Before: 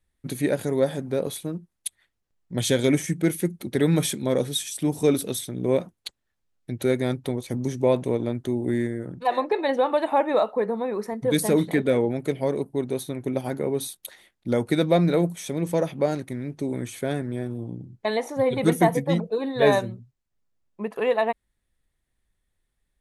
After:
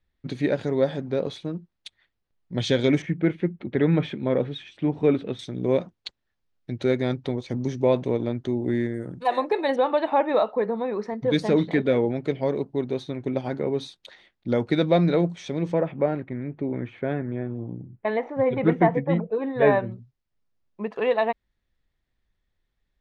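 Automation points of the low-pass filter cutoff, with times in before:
low-pass filter 24 dB per octave
5,000 Hz
from 0:03.02 2,800 Hz
from 0:05.39 5,500 Hz
from 0:08.94 9,500 Hz
from 0:09.76 5,000 Hz
from 0:15.73 2,500 Hz
from 0:19.92 5,600 Hz

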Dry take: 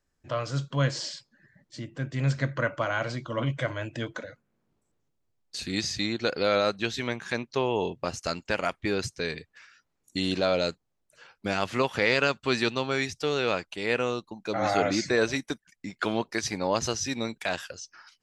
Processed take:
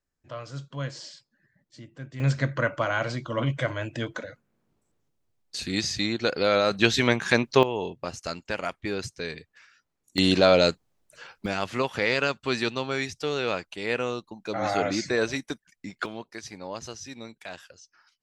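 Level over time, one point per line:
−7.5 dB
from 0:02.20 +2 dB
from 0:06.71 +9 dB
from 0:07.63 −2.5 dB
from 0:10.18 +7 dB
from 0:11.46 −1 dB
from 0:16.06 −10 dB

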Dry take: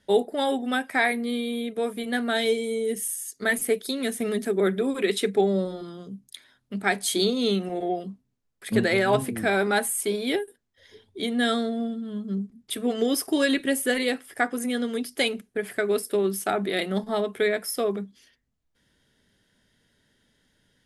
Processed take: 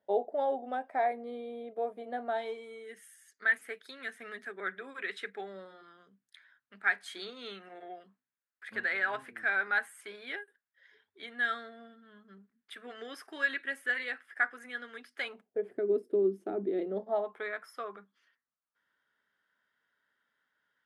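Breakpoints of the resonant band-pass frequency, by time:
resonant band-pass, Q 3.2
0:02.19 660 Hz
0:02.85 1,600 Hz
0:15.19 1,600 Hz
0:15.73 340 Hz
0:16.77 340 Hz
0:17.51 1,300 Hz

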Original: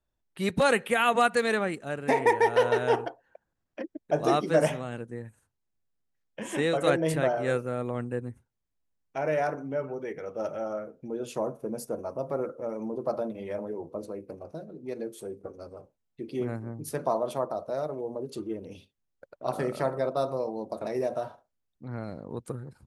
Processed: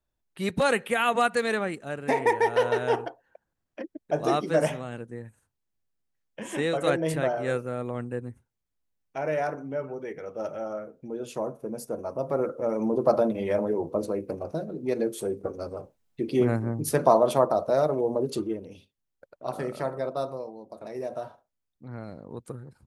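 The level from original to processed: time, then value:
0:11.79 −0.5 dB
0:12.95 +8.5 dB
0:18.32 +8.5 dB
0:18.72 −2 dB
0:20.23 −2 dB
0:20.62 −9.5 dB
0:21.19 −2.5 dB

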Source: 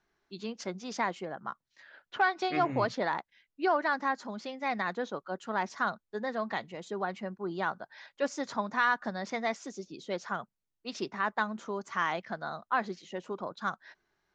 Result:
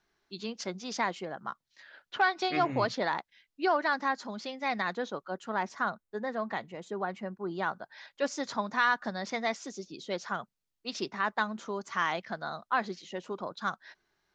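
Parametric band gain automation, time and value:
parametric band 4,400 Hz 1.5 octaves
0:04.87 +5 dB
0:05.91 −4.5 dB
0:07.09 −4.5 dB
0:08.25 +4.5 dB

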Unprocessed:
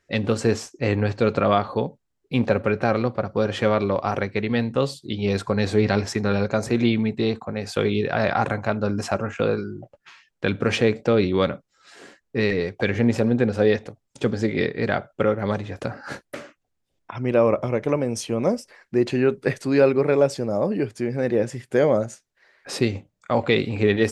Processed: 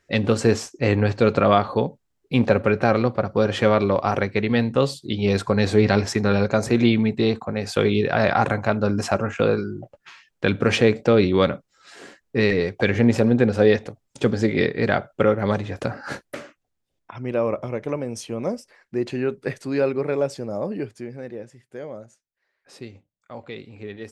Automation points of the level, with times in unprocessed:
0:16.09 +2.5 dB
0:17.21 −4.5 dB
0:20.81 −4.5 dB
0:21.52 −16.5 dB

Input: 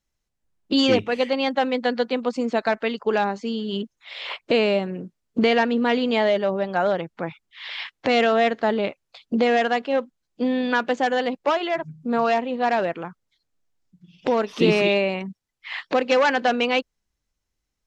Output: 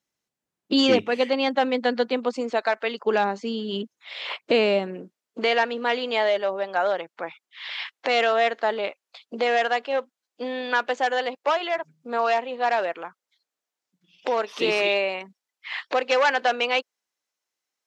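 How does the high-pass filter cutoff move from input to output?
0:02.06 180 Hz
0:02.77 570 Hz
0:03.09 210 Hz
0:04.77 210 Hz
0:05.40 510 Hz

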